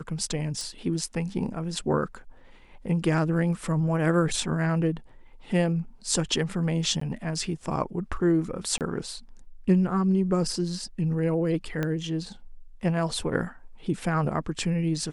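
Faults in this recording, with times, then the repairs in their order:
0.61 pop
7–7.01 gap 14 ms
8.78–8.81 gap 28 ms
11.83 pop -15 dBFS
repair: de-click; interpolate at 7, 14 ms; interpolate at 8.78, 28 ms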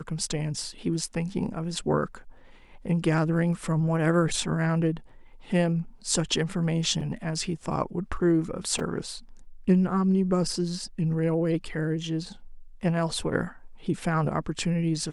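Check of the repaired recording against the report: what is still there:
11.83 pop

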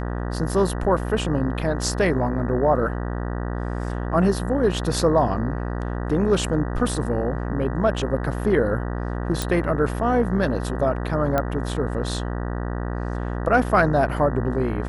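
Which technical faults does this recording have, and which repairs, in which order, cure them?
buzz 60 Hz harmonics 32 -27 dBFS
9.42 pop
11.38 pop -9 dBFS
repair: de-click; de-hum 60 Hz, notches 32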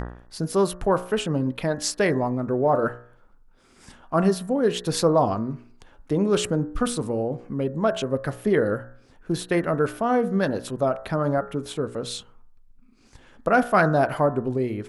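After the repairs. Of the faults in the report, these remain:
none

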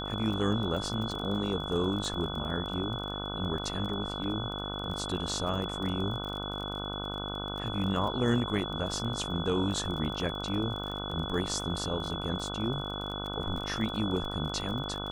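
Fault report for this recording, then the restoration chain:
buzz 50 Hz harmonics 30 -38 dBFS
crackle 30/s -36 dBFS
tone 3400 Hz -38 dBFS
4.24 gap 2.1 ms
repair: de-click; de-hum 50 Hz, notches 30; notch 3400 Hz, Q 30; interpolate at 4.24, 2.1 ms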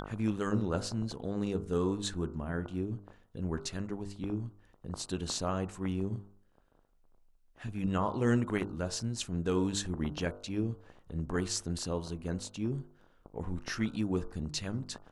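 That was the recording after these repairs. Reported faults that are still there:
none

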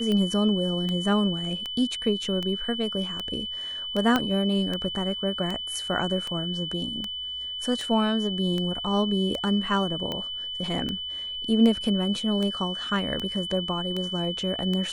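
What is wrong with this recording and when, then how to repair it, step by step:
tick 78 rpm -17 dBFS
tone 3000 Hz -31 dBFS
4.16 pop -9 dBFS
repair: de-click; notch 3000 Hz, Q 30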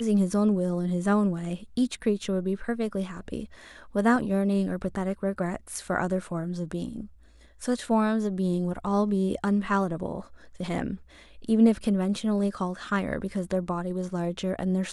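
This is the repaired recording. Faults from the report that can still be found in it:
4.16 pop

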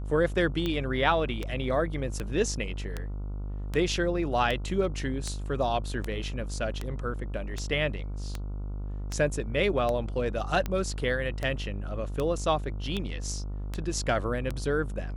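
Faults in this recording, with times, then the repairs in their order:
buzz 50 Hz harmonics 29 -34 dBFS
tick 78 rpm -17 dBFS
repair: de-click; de-hum 50 Hz, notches 29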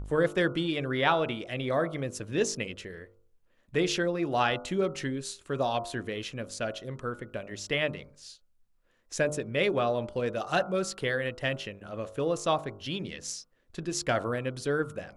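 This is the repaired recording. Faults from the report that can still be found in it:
none

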